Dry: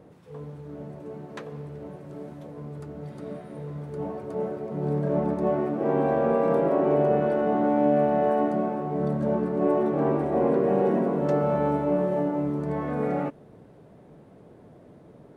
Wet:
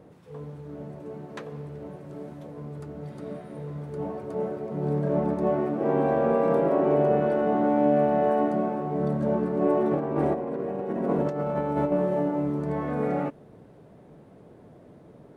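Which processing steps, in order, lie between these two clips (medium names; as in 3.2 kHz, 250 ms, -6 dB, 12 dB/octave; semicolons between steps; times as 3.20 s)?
9.91–11.92 s: compressor with a negative ratio -26 dBFS, ratio -0.5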